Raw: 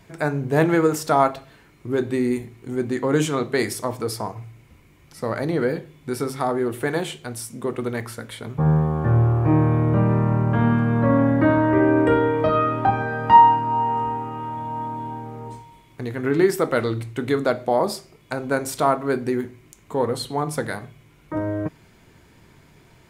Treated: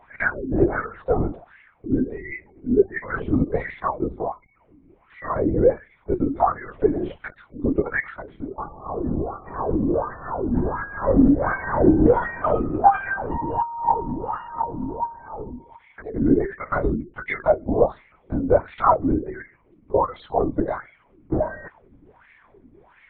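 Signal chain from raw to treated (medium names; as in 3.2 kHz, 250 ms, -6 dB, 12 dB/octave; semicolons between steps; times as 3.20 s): spectral gate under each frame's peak -30 dB strong; in parallel at -0.5 dB: gain riding within 5 dB 0.5 s; on the sum: wah-wah 1.4 Hz 240–2100 Hz, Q 6.2; LPC vocoder at 8 kHz whisper; trim +5 dB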